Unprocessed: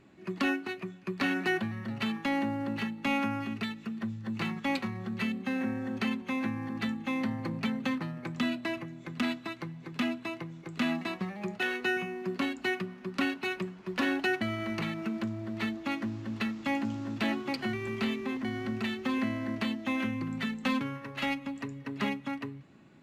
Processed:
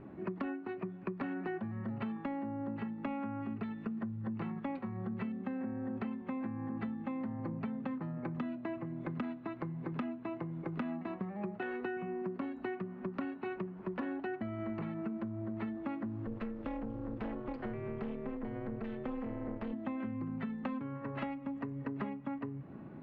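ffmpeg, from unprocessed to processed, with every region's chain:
ffmpeg -i in.wav -filter_complex "[0:a]asettb=1/sr,asplit=3[link_01][link_02][link_03];[link_01]atrim=end=16.264[link_04];[link_02]atrim=start=16.26:end=19.73,asetpts=PTS-STARTPTS,afade=type=in:duration=0.004:curve=qsin,afade=type=out:start_time=3.466:duration=0.004:curve=qsin,volume=28.5dB,asoftclip=hard,volume=-28.5dB,tremolo=f=240:d=0.889[link_05];[link_03]atrim=start=19.726[link_06];[link_04][link_05]acrossfade=duration=0.004:curve1=hsin:curve2=qsin[link_07];[link_07][link_06]acrossfade=duration=0.004:curve1=qsin:curve2=hsin,lowpass=1100,bandreject=frequency=352.6:width_type=h:width=4,bandreject=frequency=705.2:width_type=h:width=4,bandreject=frequency=1057.8:width_type=h:width=4,bandreject=frequency=1410.4:width_type=h:width=4,bandreject=frequency=1763:width_type=h:width=4,bandreject=frequency=2115.6:width_type=h:width=4,bandreject=frequency=2468.2:width_type=h:width=4,bandreject=frequency=2820.8:width_type=h:width=4,bandreject=frequency=3173.4:width_type=h:width=4,bandreject=frequency=3526:width_type=h:width=4,bandreject=frequency=3878.6:width_type=h:width=4,bandreject=frequency=4231.2:width_type=h:width=4,bandreject=frequency=4583.8:width_type=h:width=4,bandreject=frequency=4936.4:width_type=h:width=4,bandreject=frequency=5289:width_type=h:width=4,bandreject=frequency=5641.6:width_type=h:width=4,bandreject=frequency=5994.2:width_type=h:width=4,bandreject=frequency=6346.8:width_type=h:width=4,bandreject=frequency=6699.4:width_type=h:width=4,bandreject=frequency=7052:width_type=h:width=4,bandreject=frequency=7404.6:width_type=h:width=4,bandreject=frequency=7757.2:width_type=h:width=4,bandreject=frequency=8109.8:width_type=h:width=4,bandreject=frequency=8462.4:width_type=h:width=4,bandreject=frequency=8815:width_type=h:width=4,bandreject=frequency=9167.6:width_type=h:width=4,bandreject=frequency=9520.2:width_type=h:width=4,bandreject=frequency=9872.8:width_type=h:width=4,bandreject=frequency=10225.4:width_type=h:width=4,acompressor=threshold=-45dB:ratio=12,volume=9.5dB" out.wav

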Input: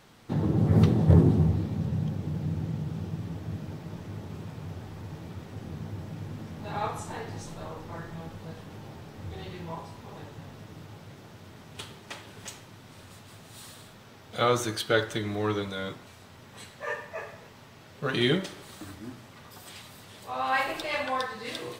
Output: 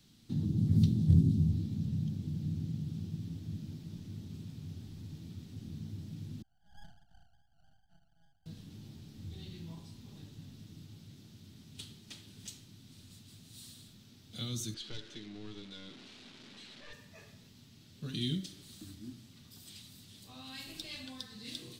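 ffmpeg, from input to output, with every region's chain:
ffmpeg -i in.wav -filter_complex "[0:a]asettb=1/sr,asplit=3[link_01][link_02][link_03];[link_01]atrim=end=6.424[link_04];[link_02]atrim=start=6.42:end=8.46,asetpts=PTS-STARTPTS,afade=type=in:duration=0.004:curve=qsin,afade=type=out:start_time=2.036:duration=0.004:curve=qsin,asuperpass=centerf=750:order=8:qfactor=4.4,aeval=exprs='max(val(0),0)':channel_layout=same[link_05];[link_03]atrim=start=8.456[link_06];[link_04][link_05]acrossfade=duration=0.004:curve1=hsin:curve2=qsin[link_07];[link_07][link_06]acrossfade=duration=0.004:curve1=qsin:curve2=hsin,asettb=1/sr,asplit=3[link_08][link_09][link_10];[link_08]atrim=end=14.744[link_11];[link_09]atrim=start=14.74:end=16.93,asetpts=PTS-STARTPTS,afade=type=in:duration=0.004:curve=qsin,afade=type=out:start_time=2.186:duration=0.004:curve=qsin,aeval=exprs='val(0)+0.5*0.0355*sgn(val(0))':channel_layout=same,highpass=340,lowpass=3000,aeval=exprs='(tanh(8.91*val(0)+0.75)-tanh(0.75))/8.91':channel_layout=same[link_12];[link_10]atrim=start=16.926[link_13];[link_11][link_12]acrossfade=duration=0.004:curve1=hsin:curve2=qsin[link_14];[link_14][link_13]acrossfade=duration=0.004:curve1=qsin:curve2=hsin,equalizer=frequency=250:width_type=o:width=1:gain=6,equalizer=frequency=500:width_type=o:width=1:gain=-8,equalizer=frequency=1000:width_type=o:width=1:gain=-3,equalizer=frequency=2000:width_type=o:width=1:gain=-4,equalizer=frequency=4000:width_type=o:width=1:gain=6,acrossover=split=270|3000[link_15][link_16][link_17];[link_16]acompressor=threshold=-38dB:ratio=6[link_18];[link_15][link_18][link_17]amix=inputs=3:normalize=0,equalizer=frequency=980:width_type=o:width=2.4:gain=-13,volume=-5dB" out.wav

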